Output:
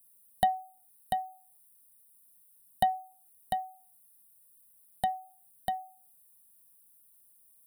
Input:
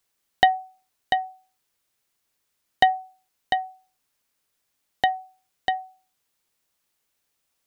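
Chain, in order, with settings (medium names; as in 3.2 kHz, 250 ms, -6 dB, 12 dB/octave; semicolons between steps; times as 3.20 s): FFT filter 150 Hz 0 dB, 210 Hz +6 dB, 320 Hz -24 dB, 660 Hz -4 dB, 1 kHz -8 dB, 1.6 kHz -15 dB, 2.3 kHz -20 dB, 3.9 kHz -10 dB, 6.4 kHz -21 dB, 9.2 kHz +13 dB; in parallel at +0.5 dB: compression, threshold -45 dBFS, peak gain reduction 24 dB; on the sum: trim -3 dB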